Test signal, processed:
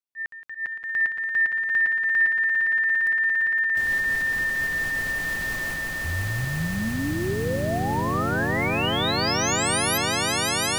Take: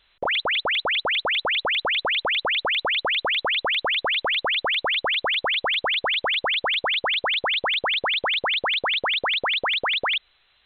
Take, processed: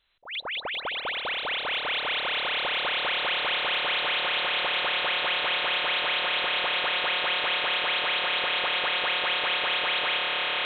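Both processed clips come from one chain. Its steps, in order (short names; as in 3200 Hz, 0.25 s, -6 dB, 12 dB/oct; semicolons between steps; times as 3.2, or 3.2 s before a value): tremolo saw up 4.5 Hz, depth 35%; swelling echo 0.172 s, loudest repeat 8, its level -7 dB; auto swell 0.159 s; gain -7 dB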